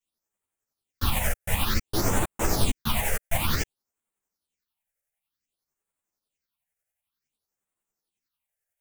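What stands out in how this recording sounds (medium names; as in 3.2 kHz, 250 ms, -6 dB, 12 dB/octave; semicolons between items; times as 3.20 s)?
phasing stages 6, 0.55 Hz, lowest notch 270–5000 Hz; tremolo saw up 11 Hz, depth 55%; a shimmering, thickened sound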